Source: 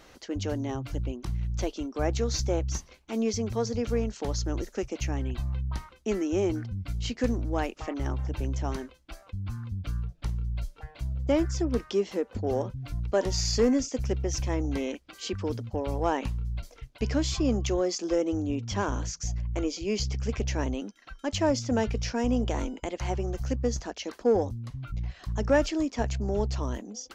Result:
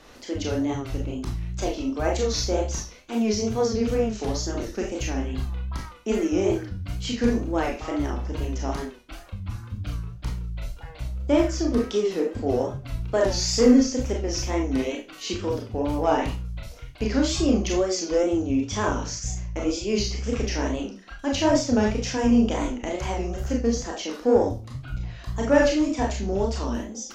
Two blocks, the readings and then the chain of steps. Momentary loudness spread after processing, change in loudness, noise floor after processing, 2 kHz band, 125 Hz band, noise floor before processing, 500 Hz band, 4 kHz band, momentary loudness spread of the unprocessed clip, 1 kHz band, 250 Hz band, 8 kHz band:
13 LU, +5.0 dB, −44 dBFS, +5.5 dB, +0.5 dB, −55 dBFS, +5.0 dB, +5.0 dB, 9 LU, +5.0 dB, +6.0 dB, +5.0 dB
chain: four-comb reverb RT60 0.33 s, combs from 25 ms, DRR −1 dB
tape wow and flutter 87 cents
level +1.5 dB

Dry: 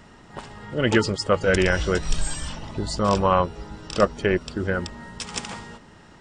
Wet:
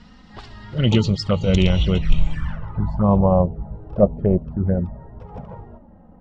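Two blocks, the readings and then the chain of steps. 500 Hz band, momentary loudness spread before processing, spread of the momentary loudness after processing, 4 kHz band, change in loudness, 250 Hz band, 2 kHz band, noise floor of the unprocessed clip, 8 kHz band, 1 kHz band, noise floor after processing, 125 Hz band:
+1.0 dB, 19 LU, 20 LU, +0.5 dB, +3.5 dB, +6.0 dB, −9.5 dB, −49 dBFS, below −10 dB, −3.5 dB, −47 dBFS, +9.0 dB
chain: flanger swept by the level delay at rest 4.4 ms, full sweep at −18.5 dBFS
low shelf with overshoot 240 Hz +8 dB, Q 1.5
low-pass filter sweep 4,500 Hz → 660 Hz, 0:01.54–0:03.35

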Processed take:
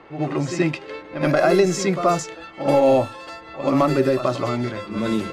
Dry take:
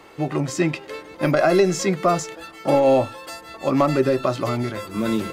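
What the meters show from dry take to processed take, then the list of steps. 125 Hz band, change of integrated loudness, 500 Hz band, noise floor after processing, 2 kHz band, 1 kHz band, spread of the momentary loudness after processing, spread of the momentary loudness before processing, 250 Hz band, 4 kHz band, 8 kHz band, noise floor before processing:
0.0 dB, +0.5 dB, +0.5 dB, −41 dBFS, +0.5 dB, +0.5 dB, 13 LU, 13 LU, +0.5 dB, 0.0 dB, −0.5 dB, −43 dBFS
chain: backwards echo 78 ms −9.5 dB
low-pass that shuts in the quiet parts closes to 2,500 Hz, open at −14.5 dBFS

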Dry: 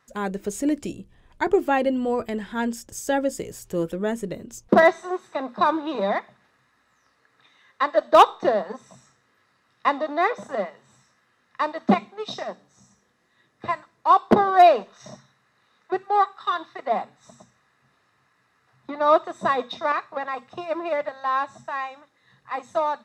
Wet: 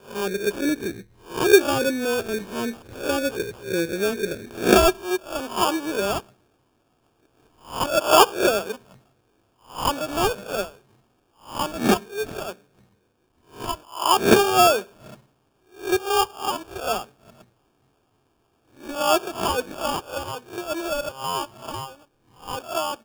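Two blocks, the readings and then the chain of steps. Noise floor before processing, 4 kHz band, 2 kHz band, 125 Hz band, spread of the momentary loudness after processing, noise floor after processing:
−66 dBFS, +10.0 dB, +2.0 dB, +2.5 dB, 18 LU, −67 dBFS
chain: peak hold with a rise ahead of every peak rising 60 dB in 0.37 s
graphic EQ with 15 bands 100 Hz +11 dB, 400 Hz +11 dB, 1,600 Hz +4 dB, 10,000 Hz −5 dB
decimation without filtering 22×
level −5.5 dB

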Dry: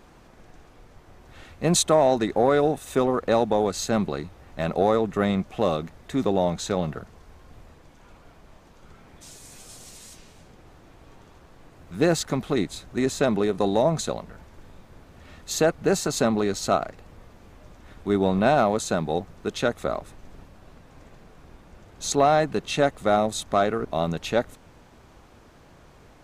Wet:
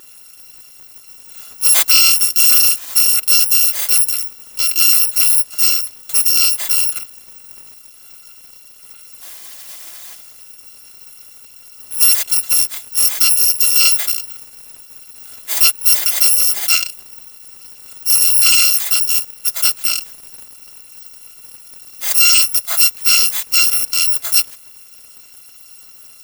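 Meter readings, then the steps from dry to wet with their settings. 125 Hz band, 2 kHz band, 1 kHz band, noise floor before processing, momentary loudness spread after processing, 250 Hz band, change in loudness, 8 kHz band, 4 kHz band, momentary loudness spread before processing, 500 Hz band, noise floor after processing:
below −20 dB, +10.5 dB, −8.0 dB, −52 dBFS, 10 LU, below −20 dB, +13.0 dB, +19.5 dB, +18.5 dB, 14 LU, below −20 dB, −42 dBFS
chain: samples in bit-reversed order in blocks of 256 samples
low-shelf EQ 390 Hz +10 dB
mid-hump overdrive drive 12 dB, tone 2,800 Hz, clips at −5 dBFS
RIAA equalisation recording

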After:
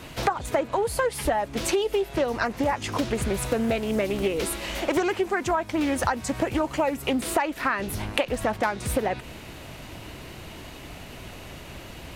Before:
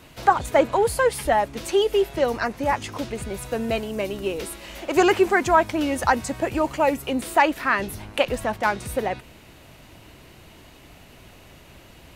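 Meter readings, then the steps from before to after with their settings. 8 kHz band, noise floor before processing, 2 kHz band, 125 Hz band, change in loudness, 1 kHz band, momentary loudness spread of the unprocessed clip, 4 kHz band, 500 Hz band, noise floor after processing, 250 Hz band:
+1.0 dB, −49 dBFS, −4.0 dB, +1.5 dB, −3.5 dB, −5.5 dB, 11 LU, −1.0 dB, −3.5 dB, −42 dBFS, −1.0 dB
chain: downward compressor 12 to 1, threshold −28 dBFS, peak gain reduction 18 dB
highs frequency-modulated by the lows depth 0.27 ms
level +7 dB

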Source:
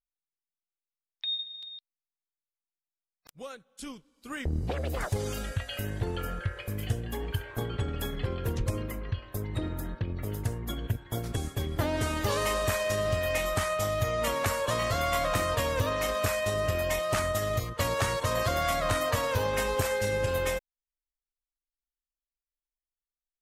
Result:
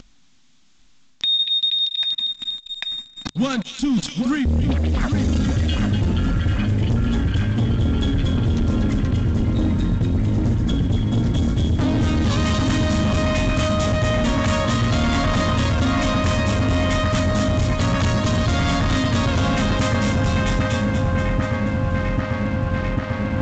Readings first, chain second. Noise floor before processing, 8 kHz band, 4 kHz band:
below −85 dBFS, +3.5 dB, +13.5 dB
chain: parametric band 3,500 Hz +4.5 dB 0.31 octaves
on a send: echo with a time of its own for lows and highs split 2,300 Hz, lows 794 ms, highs 239 ms, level −3 dB
on the sum: upward compression, threshold −33 dBFS
low shelf with overshoot 330 Hz +9 dB, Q 3
mains-hum notches 50/100/150 Hz
leveller curve on the samples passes 3
reversed playback
downward compressor 8 to 1, threshold −25 dBFS, peak gain reduction 14.5 dB
reversed playback
level +7.5 dB
A-law companding 128 kbit/s 16,000 Hz

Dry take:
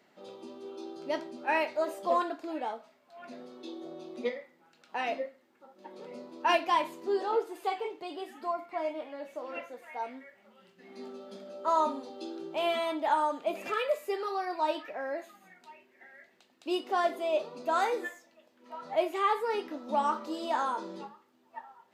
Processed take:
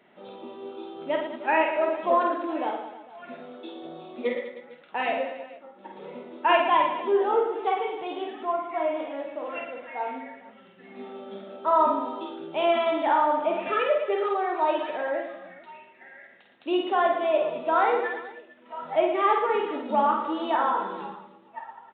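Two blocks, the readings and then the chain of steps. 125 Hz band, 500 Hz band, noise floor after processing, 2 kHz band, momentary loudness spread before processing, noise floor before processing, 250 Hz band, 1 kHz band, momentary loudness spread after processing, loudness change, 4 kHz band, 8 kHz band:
can't be measured, +7.0 dB, −54 dBFS, +6.0 dB, 18 LU, −66 dBFS, +6.5 dB, +6.5 dB, 19 LU, +6.5 dB, +3.0 dB, below −25 dB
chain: reverse bouncing-ball delay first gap 50 ms, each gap 1.3×, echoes 5
treble cut that deepens with the level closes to 2,900 Hz, closed at −25 dBFS
downsampling to 8,000 Hz
level +4.5 dB

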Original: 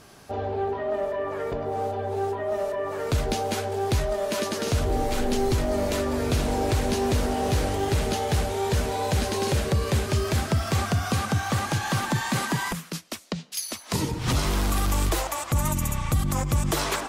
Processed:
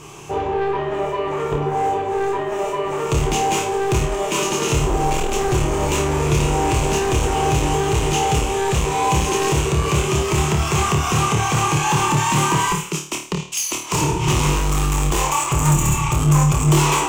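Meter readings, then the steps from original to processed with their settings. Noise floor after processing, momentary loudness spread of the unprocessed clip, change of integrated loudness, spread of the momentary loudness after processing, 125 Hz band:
−29 dBFS, 5 LU, +7.0 dB, 6 LU, +7.0 dB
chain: EQ curve with evenly spaced ripples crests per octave 0.71, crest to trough 14 dB
soft clipping −22.5 dBFS, distortion −10 dB
on a send: flutter between parallel walls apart 4.6 metres, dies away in 0.41 s
on the sum: level +7.5 dB

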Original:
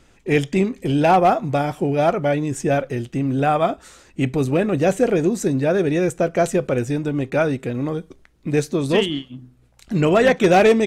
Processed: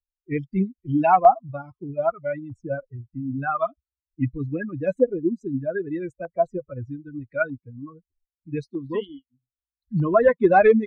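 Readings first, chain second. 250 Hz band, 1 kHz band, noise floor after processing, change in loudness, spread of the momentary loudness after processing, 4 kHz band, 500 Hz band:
−6.5 dB, −1.5 dB, below −85 dBFS, −4.0 dB, 19 LU, below −20 dB, −4.5 dB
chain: spectral dynamics exaggerated over time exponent 3
tape wow and flutter 26 cents
auto-filter low-pass saw up 0.8 Hz 880–2,100 Hz
level +1.5 dB

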